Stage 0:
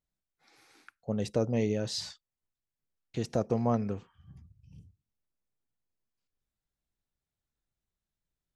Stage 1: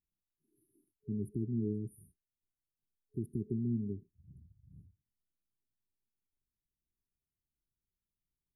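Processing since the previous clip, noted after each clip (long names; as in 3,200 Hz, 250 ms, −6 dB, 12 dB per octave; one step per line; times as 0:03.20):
brick-wall band-stop 420–9,200 Hz
level −4 dB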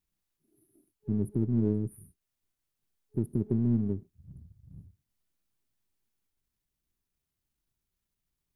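gain on one half-wave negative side −3 dB
level +8.5 dB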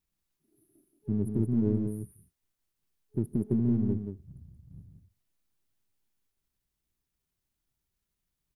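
single-tap delay 176 ms −6.5 dB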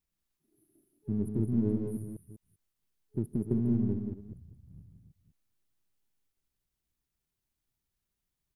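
delay that plays each chunk backwards 197 ms, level −8.5 dB
level −2.5 dB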